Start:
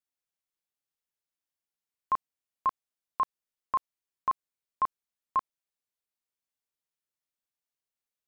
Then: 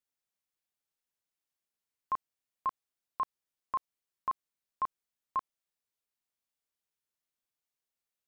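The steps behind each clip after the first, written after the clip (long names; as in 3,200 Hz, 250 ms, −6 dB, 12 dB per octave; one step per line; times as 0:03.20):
brickwall limiter −25 dBFS, peak gain reduction 5 dB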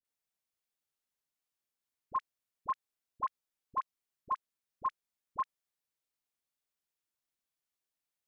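all-pass dispersion highs, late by 48 ms, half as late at 810 Hz
level −1 dB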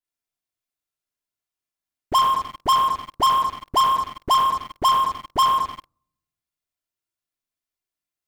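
rectangular room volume 2,900 cubic metres, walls furnished, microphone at 3.1 metres
leveller curve on the samples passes 5
level +7.5 dB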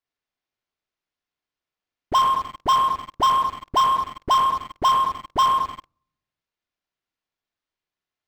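linearly interpolated sample-rate reduction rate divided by 4×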